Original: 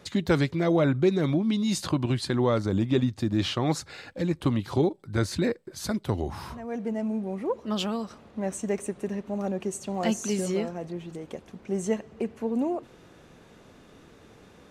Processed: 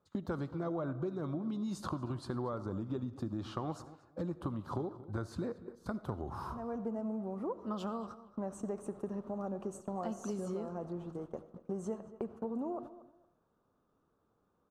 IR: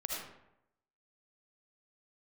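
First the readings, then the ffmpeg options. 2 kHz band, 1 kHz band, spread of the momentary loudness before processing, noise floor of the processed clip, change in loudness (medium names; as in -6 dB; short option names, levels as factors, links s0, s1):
-17.0 dB, -8.0 dB, 11 LU, -77 dBFS, -12.0 dB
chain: -filter_complex "[0:a]highshelf=f=1600:t=q:w=3:g=-8.5,agate=range=0.0891:threshold=0.0112:ratio=16:detection=peak,acompressor=threshold=0.0282:ratio=6,asplit=2[s0][s1];[s1]adelay=231,lowpass=f=3100:p=1,volume=0.158,asplit=2[s2][s3];[s3]adelay=231,lowpass=f=3100:p=1,volume=0.22[s4];[s0][s2][s4]amix=inputs=3:normalize=0,asplit=2[s5][s6];[1:a]atrim=start_sample=2205[s7];[s6][s7]afir=irnorm=-1:irlink=0,volume=0.178[s8];[s5][s8]amix=inputs=2:normalize=0,volume=0.562"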